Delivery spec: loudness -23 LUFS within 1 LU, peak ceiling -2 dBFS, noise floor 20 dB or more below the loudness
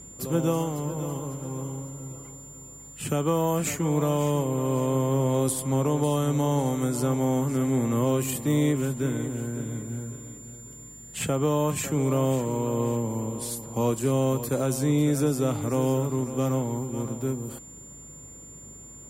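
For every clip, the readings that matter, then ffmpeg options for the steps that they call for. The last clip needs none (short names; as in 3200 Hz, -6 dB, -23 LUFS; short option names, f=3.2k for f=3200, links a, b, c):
hum 50 Hz; harmonics up to 200 Hz; hum level -52 dBFS; steady tone 7200 Hz; tone level -44 dBFS; loudness -26.5 LUFS; peak -12.5 dBFS; loudness target -23.0 LUFS
-> -af "bandreject=f=50:t=h:w=4,bandreject=f=100:t=h:w=4,bandreject=f=150:t=h:w=4,bandreject=f=200:t=h:w=4"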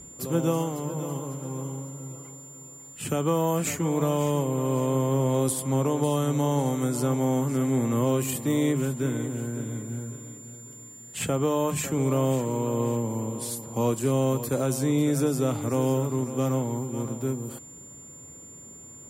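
hum none; steady tone 7200 Hz; tone level -44 dBFS
-> -af "bandreject=f=7.2k:w=30"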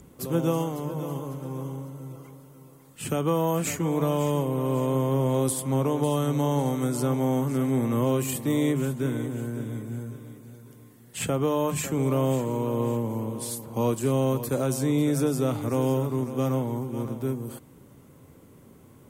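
steady tone none; loudness -26.5 LUFS; peak -12.5 dBFS; loudness target -23.0 LUFS
-> -af "volume=3.5dB"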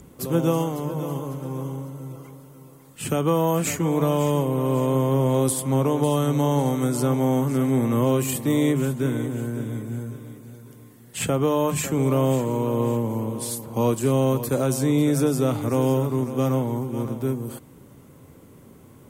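loudness -23.0 LUFS; peak -9.0 dBFS; noise floor -49 dBFS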